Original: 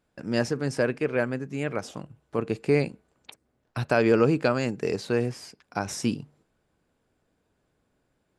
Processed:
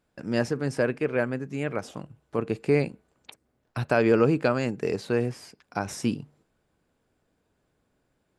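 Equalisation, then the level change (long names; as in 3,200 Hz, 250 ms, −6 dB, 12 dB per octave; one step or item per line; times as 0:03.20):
dynamic equaliser 5,700 Hz, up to −4 dB, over −49 dBFS, Q 0.9
0.0 dB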